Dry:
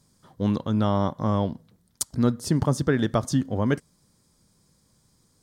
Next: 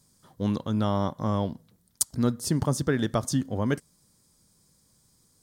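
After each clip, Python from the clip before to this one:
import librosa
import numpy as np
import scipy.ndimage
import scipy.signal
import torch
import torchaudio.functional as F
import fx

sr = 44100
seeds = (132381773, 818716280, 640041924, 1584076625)

y = fx.high_shelf(x, sr, hz=6200.0, db=9.0)
y = y * 10.0 ** (-3.0 / 20.0)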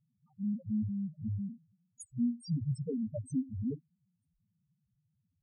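y = fx.spec_topn(x, sr, count=1)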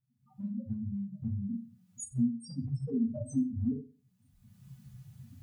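y = fx.recorder_agc(x, sr, target_db=-27.5, rise_db_per_s=31.0, max_gain_db=30)
y = fx.rev_fdn(y, sr, rt60_s=0.37, lf_ratio=1.05, hf_ratio=0.7, size_ms=24.0, drr_db=-3.5)
y = y * 10.0 ** (-8.0 / 20.0)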